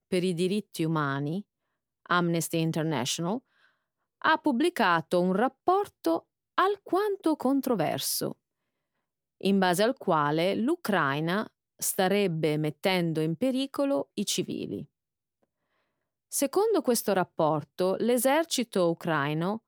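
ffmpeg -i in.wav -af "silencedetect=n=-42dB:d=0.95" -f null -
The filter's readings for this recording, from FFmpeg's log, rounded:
silence_start: 8.32
silence_end: 9.41 | silence_duration: 1.09
silence_start: 14.84
silence_end: 16.32 | silence_duration: 1.48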